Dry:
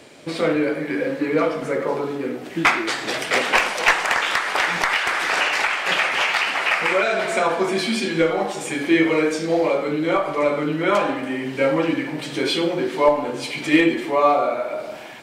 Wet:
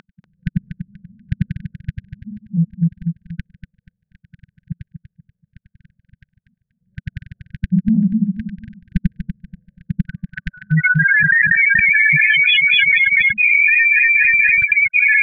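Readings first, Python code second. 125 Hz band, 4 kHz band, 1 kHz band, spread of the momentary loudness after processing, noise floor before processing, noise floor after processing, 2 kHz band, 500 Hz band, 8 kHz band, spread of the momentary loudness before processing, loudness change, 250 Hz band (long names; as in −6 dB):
+12.5 dB, +0.5 dB, below −20 dB, 20 LU, −33 dBFS, −78 dBFS, +8.5 dB, below −40 dB, below −35 dB, 8 LU, +7.5 dB, 0.0 dB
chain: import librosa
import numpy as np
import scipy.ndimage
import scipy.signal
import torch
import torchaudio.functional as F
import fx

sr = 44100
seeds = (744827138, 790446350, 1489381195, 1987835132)

y = fx.tilt_eq(x, sr, slope=2.5)
y = fx.hum_notches(y, sr, base_hz=60, count=3)
y = fx.quant_dither(y, sr, seeds[0], bits=12, dither='none')
y = fx.filter_sweep_lowpass(y, sr, from_hz=470.0, to_hz=2300.0, start_s=8.11, end_s=11.74, q=2.0)
y = fx.spec_topn(y, sr, count=4)
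y = fx.step_gate(y, sr, bpm=159, pattern='x.xxx.xxxxxxxx.', floor_db=-60.0, edge_ms=4.5)
y = fx.brickwall_bandstop(y, sr, low_hz=190.0, high_hz=1500.0)
y = fx.air_absorb(y, sr, metres=190.0)
y = fx.echo_feedback(y, sr, ms=241, feedback_pct=29, wet_db=-9.0)
y = fx.env_flatten(y, sr, amount_pct=100)
y = y * librosa.db_to_amplitude(4.5)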